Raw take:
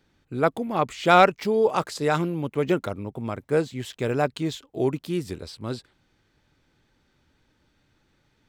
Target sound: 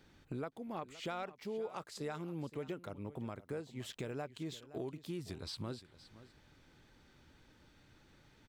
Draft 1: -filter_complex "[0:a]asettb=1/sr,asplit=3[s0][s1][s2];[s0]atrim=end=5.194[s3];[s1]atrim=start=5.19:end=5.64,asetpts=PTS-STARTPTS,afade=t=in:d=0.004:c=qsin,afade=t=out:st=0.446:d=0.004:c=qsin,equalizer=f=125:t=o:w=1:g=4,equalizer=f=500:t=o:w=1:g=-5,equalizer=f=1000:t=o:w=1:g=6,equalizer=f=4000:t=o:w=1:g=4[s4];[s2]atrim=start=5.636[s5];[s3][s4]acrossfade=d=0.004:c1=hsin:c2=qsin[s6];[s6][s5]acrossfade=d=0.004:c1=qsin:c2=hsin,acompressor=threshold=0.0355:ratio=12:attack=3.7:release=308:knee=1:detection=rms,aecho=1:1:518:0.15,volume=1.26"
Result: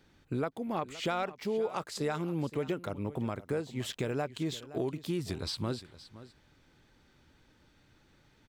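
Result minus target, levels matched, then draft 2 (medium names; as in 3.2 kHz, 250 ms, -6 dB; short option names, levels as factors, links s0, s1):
compression: peak gain reduction -8.5 dB
-filter_complex "[0:a]asettb=1/sr,asplit=3[s0][s1][s2];[s0]atrim=end=5.194[s3];[s1]atrim=start=5.19:end=5.64,asetpts=PTS-STARTPTS,afade=t=in:d=0.004:c=qsin,afade=t=out:st=0.446:d=0.004:c=qsin,equalizer=f=125:t=o:w=1:g=4,equalizer=f=500:t=o:w=1:g=-5,equalizer=f=1000:t=o:w=1:g=6,equalizer=f=4000:t=o:w=1:g=4[s4];[s2]atrim=start=5.636[s5];[s3][s4]acrossfade=d=0.004:c1=hsin:c2=qsin[s6];[s6][s5]acrossfade=d=0.004:c1=qsin:c2=hsin,acompressor=threshold=0.0119:ratio=12:attack=3.7:release=308:knee=1:detection=rms,aecho=1:1:518:0.15,volume=1.26"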